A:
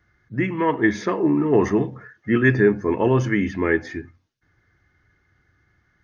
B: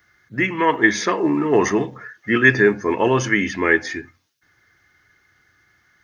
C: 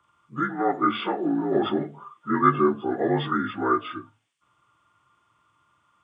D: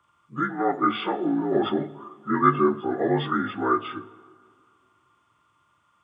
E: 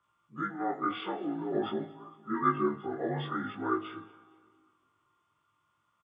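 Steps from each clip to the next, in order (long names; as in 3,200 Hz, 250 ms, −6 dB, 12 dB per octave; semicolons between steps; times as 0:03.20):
spectral tilt +3 dB per octave; level +5 dB
partials spread apart or drawn together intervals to 81%; level −4.5 dB
dense smooth reverb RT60 2.3 s, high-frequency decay 0.6×, DRR 18.5 dB
tuned comb filter 160 Hz, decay 1.5 s, mix 60%; repeating echo 232 ms, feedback 42%, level −23 dB; chorus effect 0.48 Hz, delay 17.5 ms, depth 3.3 ms; level +1.5 dB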